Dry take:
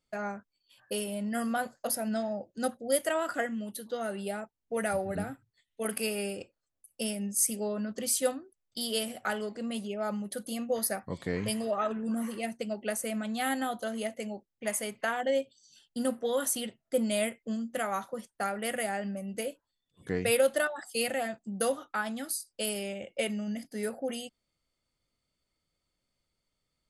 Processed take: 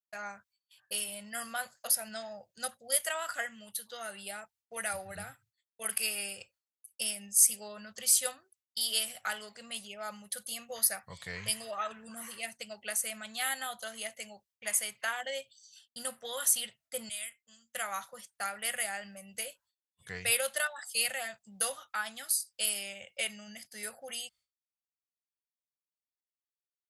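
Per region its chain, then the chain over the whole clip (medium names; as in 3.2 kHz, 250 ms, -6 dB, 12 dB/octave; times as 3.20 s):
17.09–17.75 s: amplifier tone stack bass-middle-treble 5-5-5 + band-stop 4.4 kHz, Q 8.4
whole clip: high-pass 76 Hz; expander -57 dBFS; amplifier tone stack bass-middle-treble 10-0-10; trim +5 dB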